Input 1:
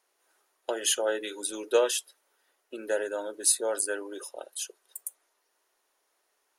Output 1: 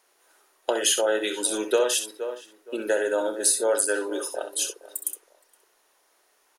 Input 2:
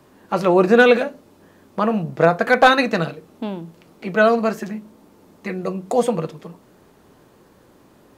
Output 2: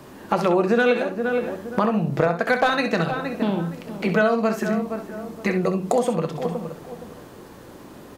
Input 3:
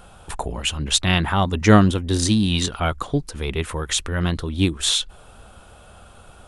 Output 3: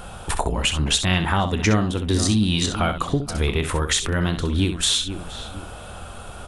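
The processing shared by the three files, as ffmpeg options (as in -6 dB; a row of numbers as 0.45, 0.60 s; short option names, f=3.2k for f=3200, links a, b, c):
-filter_complex "[0:a]asplit=2[a][b];[b]adelay=468,lowpass=f=1.5k:p=1,volume=-17dB,asplit=2[c][d];[d]adelay=468,lowpass=f=1.5k:p=1,volume=0.26[e];[c][e]amix=inputs=2:normalize=0[f];[a][f]amix=inputs=2:normalize=0,acompressor=threshold=-28dB:ratio=4,asplit=2[g][h];[h]aecho=0:1:29|65:0.168|0.355[i];[g][i]amix=inputs=2:normalize=0,volume=8.5dB"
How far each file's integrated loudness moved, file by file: +3.5, -4.5, -1.0 LU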